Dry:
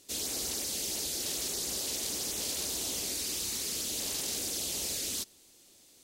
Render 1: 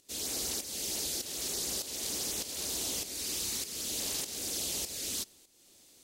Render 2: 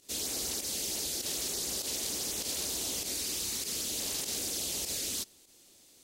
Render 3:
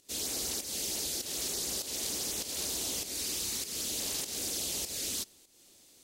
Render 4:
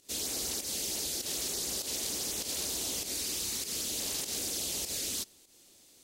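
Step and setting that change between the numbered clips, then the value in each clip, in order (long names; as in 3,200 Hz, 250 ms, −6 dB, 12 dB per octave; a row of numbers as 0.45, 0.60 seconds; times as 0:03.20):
fake sidechain pumping, release: 441, 66, 254, 123 milliseconds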